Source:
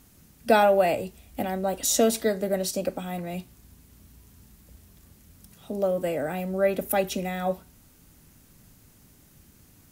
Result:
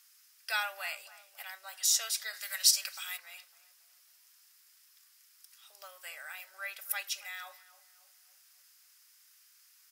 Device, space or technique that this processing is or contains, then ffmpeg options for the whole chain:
headphones lying on a table: -filter_complex "[0:a]asplit=3[s0][s1][s2];[s0]afade=t=out:st=2.33:d=0.02[s3];[s1]tiltshelf=f=750:g=-10,afade=t=in:st=2.33:d=0.02,afade=t=out:st=3.16:d=0.02[s4];[s2]afade=t=in:st=3.16:d=0.02[s5];[s3][s4][s5]amix=inputs=3:normalize=0,highpass=f=1300:w=0.5412,highpass=f=1300:w=1.3066,equalizer=f=5100:t=o:w=0.28:g=8.5,asplit=2[s6][s7];[s7]adelay=277,lowpass=f=1300:p=1,volume=0.178,asplit=2[s8][s9];[s9]adelay=277,lowpass=f=1300:p=1,volume=0.55,asplit=2[s10][s11];[s11]adelay=277,lowpass=f=1300:p=1,volume=0.55,asplit=2[s12][s13];[s13]adelay=277,lowpass=f=1300:p=1,volume=0.55,asplit=2[s14][s15];[s15]adelay=277,lowpass=f=1300:p=1,volume=0.55[s16];[s6][s8][s10][s12][s14][s16]amix=inputs=6:normalize=0,volume=0.668"

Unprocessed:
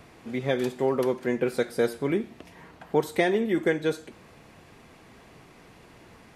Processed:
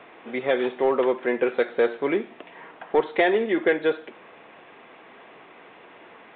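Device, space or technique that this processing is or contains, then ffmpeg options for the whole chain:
telephone: -af "highpass=400,lowpass=3400,asoftclip=type=tanh:threshold=0.141,volume=2.24" -ar 8000 -c:a pcm_alaw

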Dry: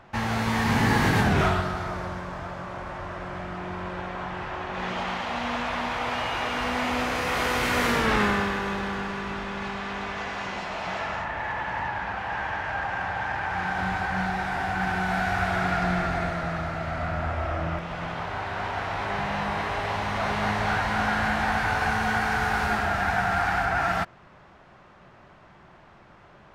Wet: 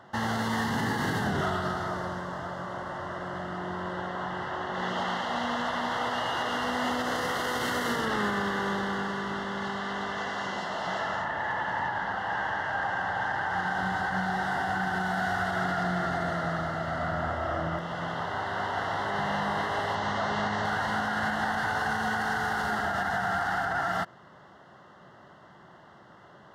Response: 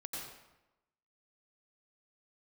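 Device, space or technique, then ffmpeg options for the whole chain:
PA system with an anti-feedback notch: -filter_complex "[0:a]asettb=1/sr,asplit=3[s0][s1][s2];[s0]atrim=end=19.954[s3];[s1]atrim=start=19.95:end=20.65,asetpts=PTS-STARTPTS,afade=t=in:d=0.004:c=qsin,afade=t=out:st=0.696:d=0.004:c=qsin,lowpass=f=7700:w=0.5412,lowpass=f=7700:w=1.3066[s4];[s2]atrim=start=20.646[s5];[s3][s4]acrossfade=d=0.004:c1=hsin:c2=qsin[s6];[s6][s5]acrossfade=d=0.004:c1=qsin:c2=hsin,highpass=120,asuperstop=centerf=2400:order=8:qfactor=3.6,alimiter=limit=0.1:level=0:latency=1:release=71"

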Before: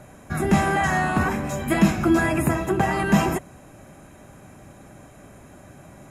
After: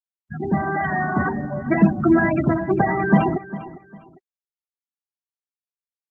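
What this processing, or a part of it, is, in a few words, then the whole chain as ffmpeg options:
video call: -filter_complex "[0:a]asplit=3[s0][s1][s2];[s0]afade=t=out:st=1.24:d=0.02[s3];[s1]lowpass=7300,afade=t=in:st=1.24:d=0.02,afade=t=out:st=1.98:d=0.02[s4];[s2]afade=t=in:st=1.98:d=0.02[s5];[s3][s4][s5]amix=inputs=3:normalize=0,afftfilt=real='re*gte(hypot(re,im),0.141)':imag='im*gte(hypot(re,im),0.141)':win_size=1024:overlap=0.75,highpass=110,aecho=1:1:402|804:0.158|0.0396,dynaudnorm=f=430:g=5:m=4.22,volume=0.75" -ar 48000 -c:a libopus -b:a 20k

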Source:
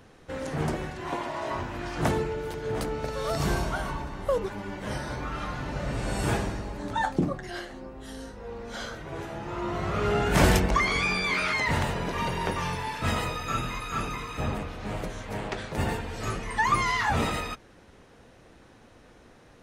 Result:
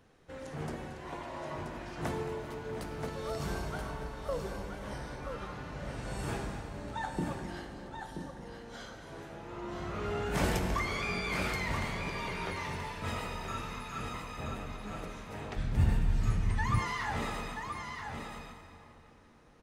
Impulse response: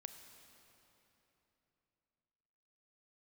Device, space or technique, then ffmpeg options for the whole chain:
cave: -filter_complex "[0:a]aecho=1:1:225:0.211,aecho=1:1:979:0.473[s0];[1:a]atrim=start_sample=2205[s1];[s0][s1]afir=irnorm=-1:irlink=0,asplit=3[s2][s3][s4];[s2]afade=t=out:st=15.56:d=0.02[s5];[s3]asubboost=boost=7:cutoff=170,afade=t=in:st=15.56:d=0.02,afade=t=out:st=16.78:d=0.02[s6];[s4]afade=t=in:st=16.78:d=0.02[s7];[s5][s6][s7]amix=inputs=3:normalize=0,volume=0.596"

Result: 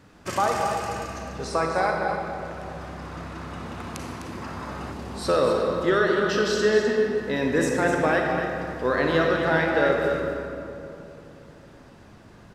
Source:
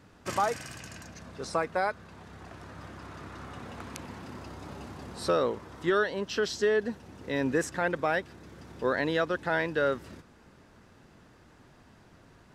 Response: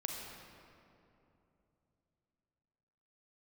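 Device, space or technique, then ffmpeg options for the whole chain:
cave: -filter_complex "[0:a]aecho=1:1:254:0.398[s0];[1:a]atrim=start_sample=2205[s1];[s0][s1]afir=irnorm=-1:irlink=0,asettb=1/sr,asplit=3[s2][s3][s4];[s2]atrim=end=4.424[s5];[s3]atrim=start=4.42:end=4.92,asetpts=PTS-STARTPTS,afade=t=in:d=0.004:c=qsin,afade=t=out:st=0.496:d=0.004:c=qsin,equalizer=f=1300:w=1.4:g=6.5[s6];[s4]atrim=start=4.916[s7];[s5][s6]acrossfade=d=0.004:c1=hsin:c2=qsin[s8];[s8][s7]acrossfade=d=0.004:c1=qsin:c2=hsin,volume=1.78"

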